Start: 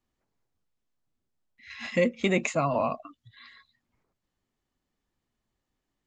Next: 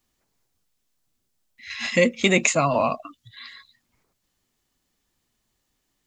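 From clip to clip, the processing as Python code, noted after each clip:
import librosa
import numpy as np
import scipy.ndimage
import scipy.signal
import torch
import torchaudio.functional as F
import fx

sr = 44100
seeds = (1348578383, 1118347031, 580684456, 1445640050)

y = fx.high_shelf(x, sr, hz=2900.0, db=11.5)
y = y * 10.0 ** (4.5 / 20.0)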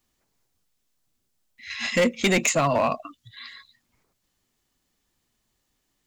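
y = np.clip(x, -10.0 ** (-15.0 / 20.0), 10.0 ** (-15.0 / 20.0))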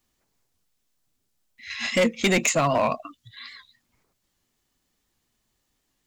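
y = fx.record_warp(x, sr, rpm=78.0, depth_cents=100.0)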